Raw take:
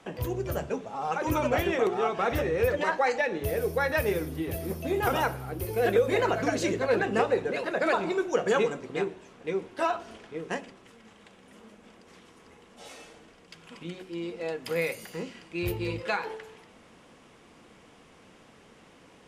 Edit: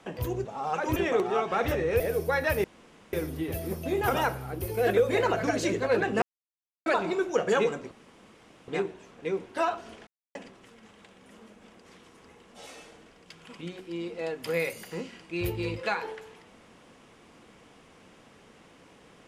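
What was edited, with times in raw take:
0.45–0.83 cut
1.34–1.63 cut
2.67–3.48 cut
4.12 insert room tone 0.49 s
7.21–7.85 mute
8.9 insert room tone 0.77 s
10.29–10.57 mute

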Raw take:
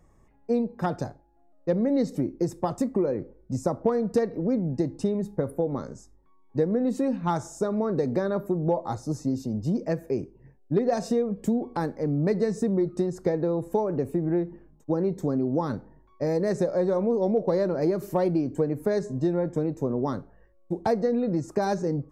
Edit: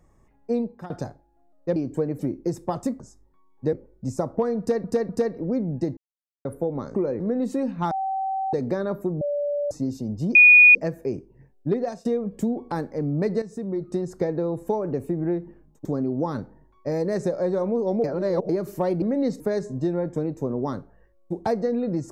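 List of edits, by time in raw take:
0.64–0.9 fade out, to -19.5 dB
1.76–2.14 swap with 18.37–18.8
2.95–3.2 swap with 5.92–6.65
4.06–4.31 loop, 3 plays
4.94–5.42 mute
7.36–7.98 bleep 770 Hz -23.5 dBFS
8.66–9.16 bleep 580 Hz -22.5 dBFS
9.8 add tone 2460 Hz -8 dBFS 0.40 s
10.8–11.1 fade out, to -23 dB
12.47–13.08 fade in, from -12.5 dB
14.9–15.2 cut
17.39–17.84 reverse

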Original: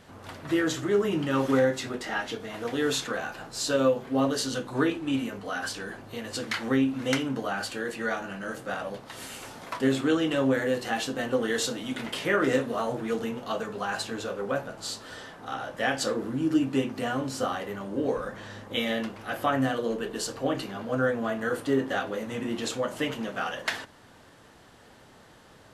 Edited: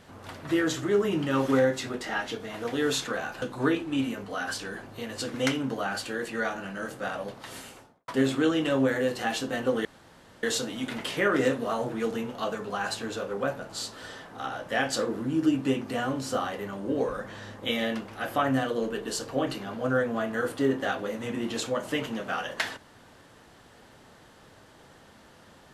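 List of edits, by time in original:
3.42–4.57 cut
6.49–7 cut
9.14–9.74 studio fade out
11.51 insert room tone 0.58 s

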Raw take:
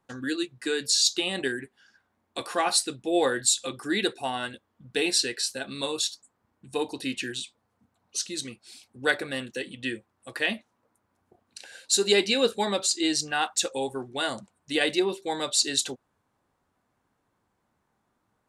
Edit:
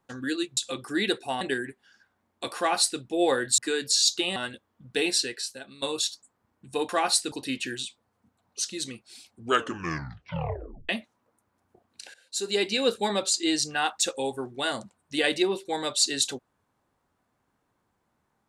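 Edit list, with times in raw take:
0.57–1.35 swap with 3.52–4.36
2.51–2.94 copy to 6.89
5.04–5.82 fade out, to -15 dB
8.86 tape stop 1.60 s
11.71–12.56 fade in, from -16.5 dB

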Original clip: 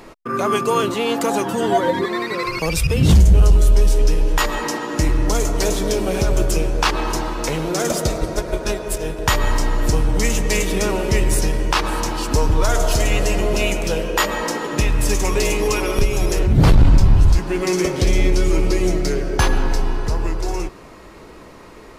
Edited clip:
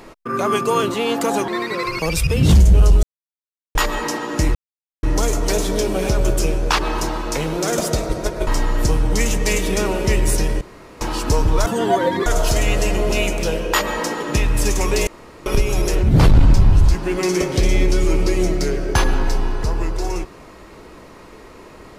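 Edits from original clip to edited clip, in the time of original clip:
1.48–2.08 move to 12.7
3.63–4.35 mute
5.15 insert silence 0.48 s
8.59–9.51 cut
11.65–12.05 room tone
15.51–15.9 room tone

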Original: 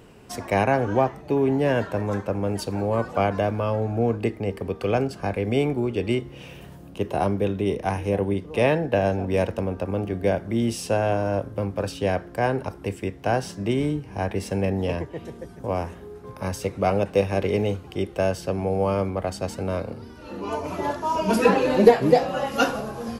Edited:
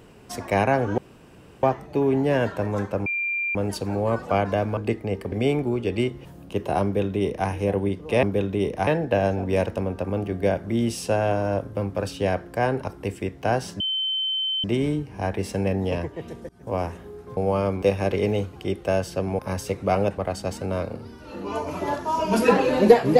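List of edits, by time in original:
0.98 insert room tone 0.65 s
2.41 add tone 2380 Hz -23 dBFS 0.49 s
3.63–4.13 cut
4.68–5.43 cut
6.36–6.7 cut
7.29–7.93 copy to 8.68
13.61 add tone 3080 Hz -22.5 dBFS 0.84 s
15.46–15.71 fade in, from -22.5 dB
16.34–17.13 swap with 18.7–19.15

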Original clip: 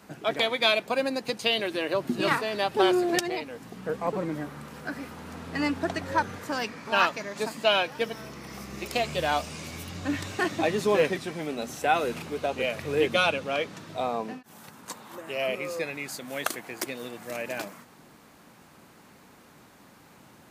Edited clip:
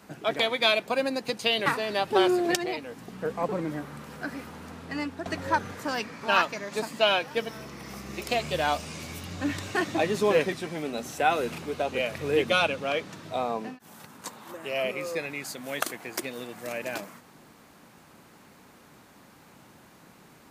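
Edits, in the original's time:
1.66–2.3 cut
5.07–5.9 fade out, to -8.5 dB

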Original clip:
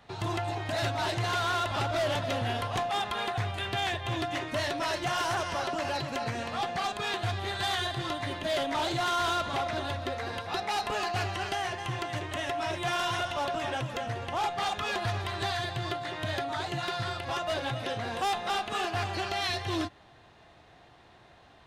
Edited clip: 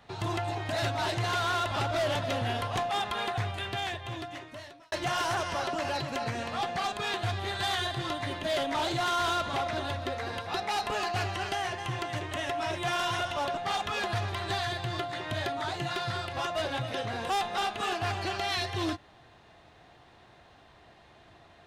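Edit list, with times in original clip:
3.37–4.92 fade out linear
13.57–14.49 cut

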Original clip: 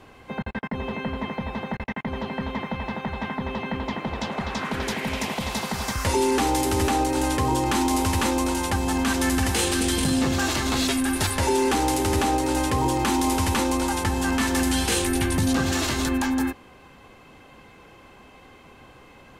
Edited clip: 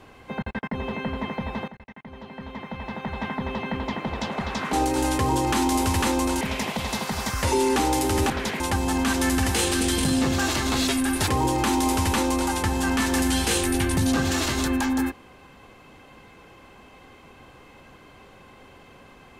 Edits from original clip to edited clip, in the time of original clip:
1.68–3.23 fade in quadratic, from -14.5 dB
4.73–5.03 swap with 6.92–8.6
11.28–12.69 cut

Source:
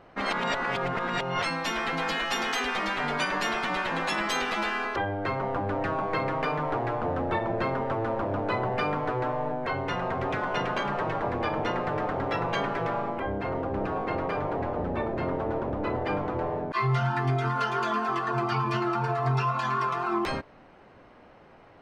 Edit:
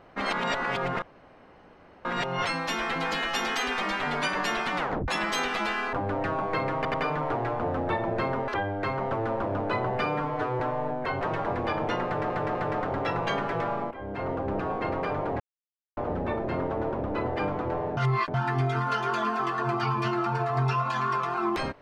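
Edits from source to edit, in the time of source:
1.02 insert room tone 1.03 s
3.74 tape stop 0.31 s
4.9–5.53 move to 7.9
6.36 stutter 0.09 s, 3 plays
8.85–9.21 stretch 1.5×
9.82–10.97 cut
11.81–12.06 loop, 3 plays
13.17–13.54 fade in linear, from -14 dB
14.66 insert silence 0.57 s
16.66–17.03 reverse

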